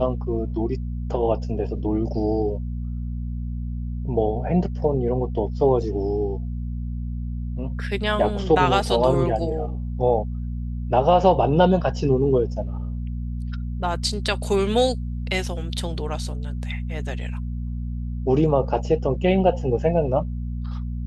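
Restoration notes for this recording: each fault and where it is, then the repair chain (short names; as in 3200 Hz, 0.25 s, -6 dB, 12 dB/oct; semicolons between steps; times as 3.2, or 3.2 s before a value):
hum 60 Hz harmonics 4 -28 dBFS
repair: de-hum 60 Hz, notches 4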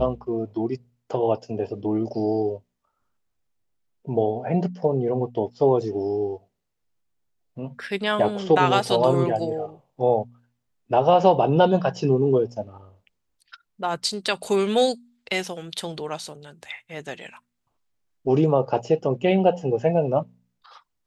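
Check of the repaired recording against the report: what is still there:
none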